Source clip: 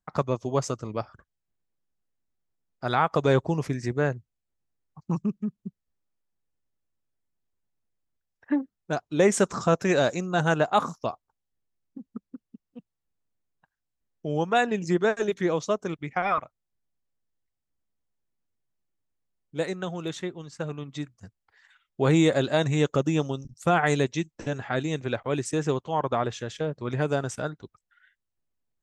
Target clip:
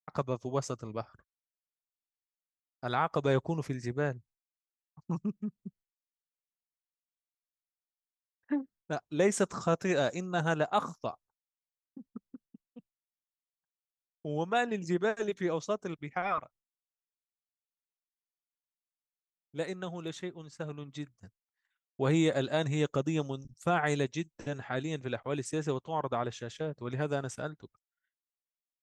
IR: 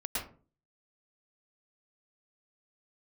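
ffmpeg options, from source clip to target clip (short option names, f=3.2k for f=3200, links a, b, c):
-af "agate=range=-33dB:threshold=-47dB:ratio=3:detection=peak,volume=-6.5dB"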